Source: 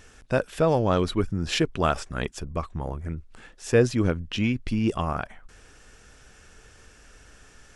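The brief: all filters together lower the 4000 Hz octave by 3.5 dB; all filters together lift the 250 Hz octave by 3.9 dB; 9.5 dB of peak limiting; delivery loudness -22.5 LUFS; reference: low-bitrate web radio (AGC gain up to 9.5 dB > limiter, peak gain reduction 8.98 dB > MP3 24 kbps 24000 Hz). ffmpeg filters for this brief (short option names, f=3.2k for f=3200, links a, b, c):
-af "equalizer=f=250:t=o:g=5,equalizer=f=4k:t=o:g=-5,alimiter=limit=-15dB:level=0:latency=1,dynaudnorm=m=9.5dB,alimiter=limit=-24dB:level=0:latency=1,volume=12.5dB" -ar 24000 -c:a libmp3lame -b:a 24k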